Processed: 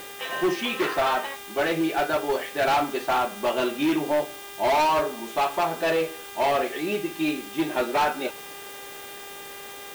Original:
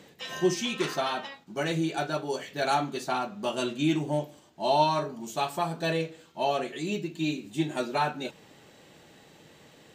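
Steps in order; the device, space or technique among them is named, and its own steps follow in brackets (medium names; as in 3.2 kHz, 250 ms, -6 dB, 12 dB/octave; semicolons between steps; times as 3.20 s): aircraft radio (band-pass 370–2400 Hz; hard clipper -27.5 dBFS, distortion -8 dB; mains buzz 400 Hz, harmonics 9, -52 dBFS -2 dB/octave; white noise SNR 18 dB); trim +9 dB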